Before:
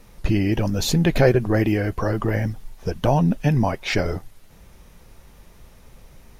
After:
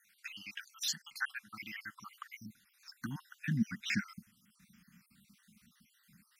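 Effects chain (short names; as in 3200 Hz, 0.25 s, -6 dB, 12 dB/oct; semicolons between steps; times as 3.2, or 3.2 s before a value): random spectral dropouts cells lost 57%; Chebyshev band-stop 210–1400 Hz, order 3; high-pass sweep 800 Hz -> 230 Hz, 1.16–3.77; gain -7 dB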